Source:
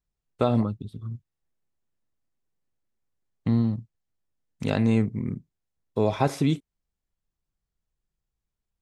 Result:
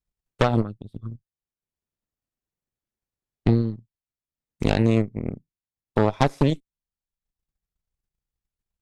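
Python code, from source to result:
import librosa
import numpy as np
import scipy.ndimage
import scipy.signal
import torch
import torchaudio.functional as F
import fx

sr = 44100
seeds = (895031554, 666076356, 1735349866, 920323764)

y = fx.transient(x, sr, attack_db=8, sustain_db=-6)
y = fx.cheby_harmonics(y, sr, harmonics=(8,), levels_db=(-13,), full_scale_db=-0.5)
y = y * librosa.db_to_amplitude(-4.5)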